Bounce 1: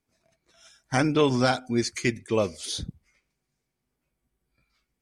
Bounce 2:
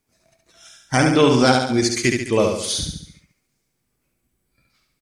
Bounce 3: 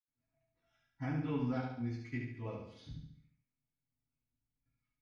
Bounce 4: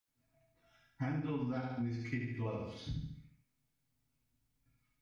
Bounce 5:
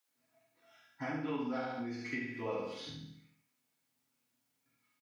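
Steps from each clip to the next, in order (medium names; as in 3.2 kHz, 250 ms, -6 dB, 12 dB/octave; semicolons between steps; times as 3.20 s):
treble shelf 6.5 kHz +5.5 dB; on a send: feedback delay 70 ms, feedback 50%, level -4 dB; on the sum: trim +5.5 dB
distance through air 250 m; reverberation RT60 0.20 s, pre-delay 76 ms; trim -2 dB
compression 6:1, threshold -43 dBFS, peak gain reduction 12 dB; trim +8.5 dB
high-pass 330 Hz 12 dB/octave; doubling 45 ms -4.5 dB; trim +4 dB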